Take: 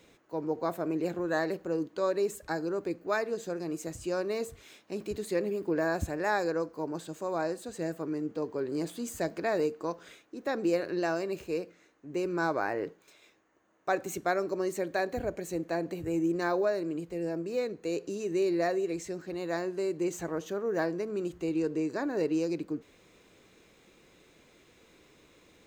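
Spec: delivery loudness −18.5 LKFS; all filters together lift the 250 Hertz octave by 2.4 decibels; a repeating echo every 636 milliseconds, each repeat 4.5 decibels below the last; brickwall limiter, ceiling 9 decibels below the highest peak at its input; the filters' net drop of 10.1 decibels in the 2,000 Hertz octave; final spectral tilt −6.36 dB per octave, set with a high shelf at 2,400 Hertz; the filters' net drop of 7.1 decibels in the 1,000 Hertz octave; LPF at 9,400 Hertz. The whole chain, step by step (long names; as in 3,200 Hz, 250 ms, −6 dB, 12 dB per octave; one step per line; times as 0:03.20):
low-pass filter 9,400 Hz
parametric band 250 Hz +5 dB
parametric band 1,000 Hz −9 dB
parametric band 2,000 Hz −8.5 dB
high-shelf EQ 2,400 Hz −3 dB
brickwall limiter −26 dBFS
repeating echo 636 ms, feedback 60%, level −4.5 dB
level +15.5 dB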